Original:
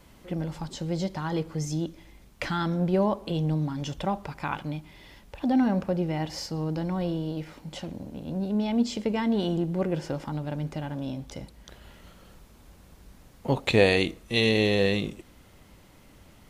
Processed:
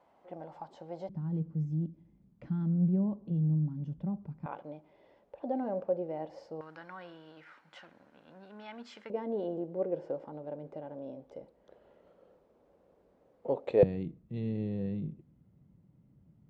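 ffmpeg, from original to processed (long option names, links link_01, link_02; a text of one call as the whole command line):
ffmpeg -i in.wav -af "asetnsamples=nb_out_samples=441:pad=0,asendcmd='1.09 bandpass f 170;4.46 bandpass f 550;6.61 bandpass f 1500;9.1 bandpass f 510;13.83 bandpass f 150',bandpass=frequency=740:width_type=q:width=2.8:csg=0" out.wav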